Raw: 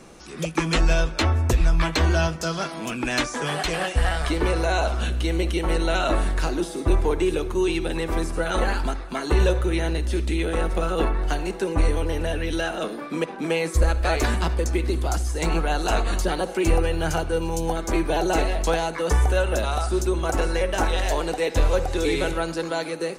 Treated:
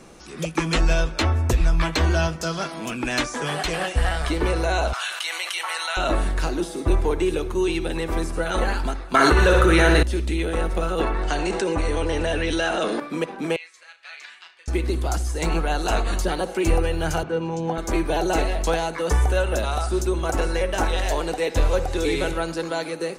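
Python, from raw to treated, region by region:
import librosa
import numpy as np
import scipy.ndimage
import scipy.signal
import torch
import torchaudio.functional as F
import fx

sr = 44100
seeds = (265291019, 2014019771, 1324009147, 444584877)

y = fx.chain(x, sr, fx.highpass(hz=930.0, slope=24),
    fx.env_flatten(amount_pct=70), at=(4.93, 5.97))
y = fx.chain(y, sr, fx.peak_eq(hz=1400.0, db=10.0, octaves=0.65),
    fx.room_flutter(wall_m=10.1, rt60_s=0.51),
    fx.env_flatten(amount_pct=100), at=(9.14, 10.03))
y = fx.chain(y, sr, fx.steep_lowpass(hz=9200.0, slope=48),
    fx.low_shelf(hz=250.0, db=-6.5),
    fx.env_flatten(amount_pct=70), at=(11.01, 13.0))
y = fx.chain(y, sr, fx.ladder_bandpass(hz=2900.0, resonance_pct=25),
    fx.doubler(ms=35.0, db=-9.0), at=(13.56, 14.68))
y = fx.chain(y, sr, fx.cheby1_bandpass(low_hz=150.0, high_hz=7200.0, order=3),
    fx.bass_treble(bass_db=4, treble_db=-11), at=(17.23, 17.78))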